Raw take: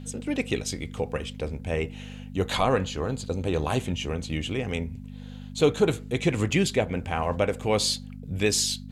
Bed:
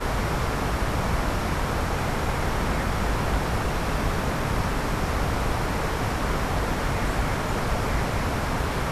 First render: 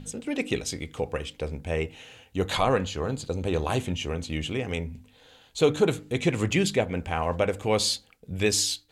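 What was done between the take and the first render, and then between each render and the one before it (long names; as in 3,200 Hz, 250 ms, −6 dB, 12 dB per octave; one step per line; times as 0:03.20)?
hum removal 50 Hz, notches 6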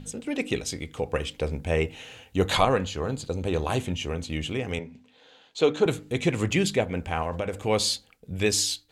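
0:01.13–0:02.65: clip gain +3.5 dB
0:04.79–0:05.86: three-way crossover with the lows and the highs turned down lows −23 dB, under 170 Hz, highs −19 dB, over 6,800 Hz
0:07.22–0:07.66: downward compressor, threshold −24 dBFS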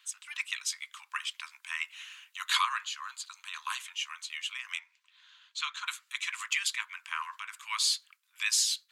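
harmonic and percussive parts rebalanced harmonic −5 dB
Butterworth high-pass 1,000 Hz 96 dB per octave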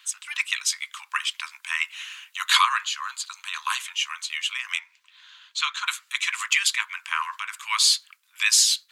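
level +9 dB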